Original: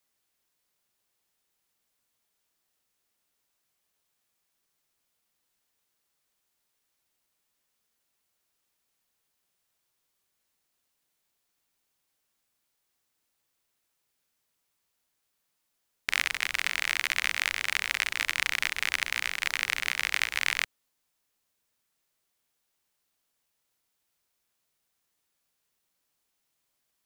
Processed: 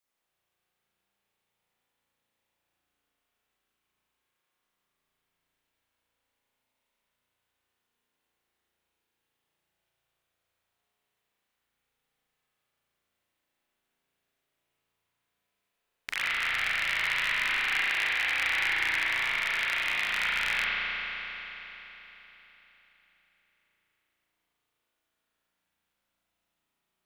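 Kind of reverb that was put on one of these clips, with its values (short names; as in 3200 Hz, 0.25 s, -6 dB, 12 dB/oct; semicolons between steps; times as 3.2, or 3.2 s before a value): spring tank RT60 3.9 s, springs 35 ms, chirp 65 ms, DRR -10 dB; gain -8 dB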